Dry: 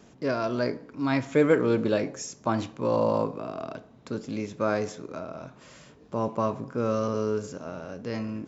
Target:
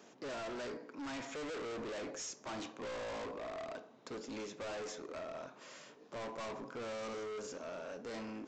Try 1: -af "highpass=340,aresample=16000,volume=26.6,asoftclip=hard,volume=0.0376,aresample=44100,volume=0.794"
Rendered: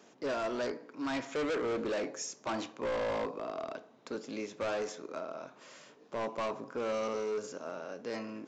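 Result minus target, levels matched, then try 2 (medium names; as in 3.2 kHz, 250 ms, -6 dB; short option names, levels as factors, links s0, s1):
overload inside the chain: distortion -5 dB
-af "highpass=340,aresample=16000,volume=89.1,asoftclip=hard,volume=0.0112,aresample=44100,volume=0.794"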